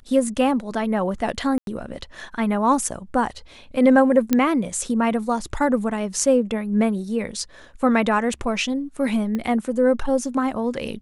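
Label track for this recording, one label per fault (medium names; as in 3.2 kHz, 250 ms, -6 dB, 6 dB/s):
1.580000	1.670000	dropout 92 ms
4.330000	4.330000	pop -5 dBFS
9.350000	9.350000	pop -15 dBFS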